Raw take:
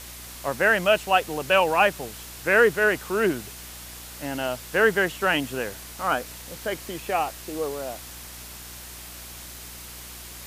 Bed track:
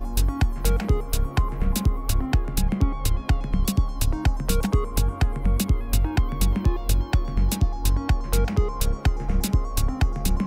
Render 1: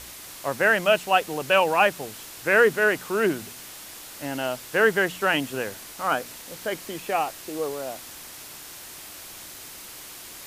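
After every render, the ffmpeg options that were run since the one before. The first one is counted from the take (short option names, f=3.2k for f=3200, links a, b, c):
-af "bandreject=f=60:t=h:w=4,bandreject=f=120:t=h:w=4,bandreject=f=180:t=h:w=4,bandreject=f=240:t=h:w=4"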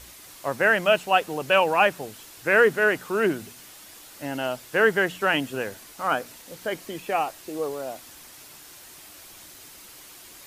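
-af "afftdn=nr=6:nf=-42"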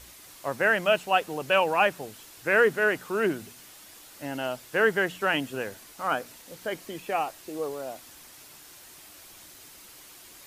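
-af "volume=-3dB"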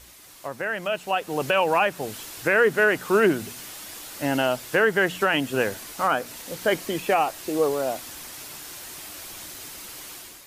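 -af "alimiter=limit=-20dB:level=0:latency=1:release=273,dynaudnorm=f=780:g=3:m=10dB"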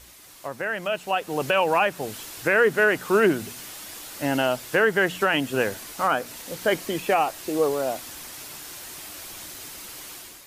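-af anull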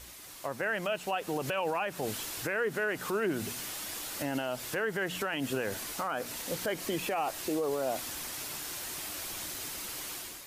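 -af "acompressor=threshold=-23dB:ratio=6,alimiter=limit=-22.5dB:level=0:latency=1:release=71"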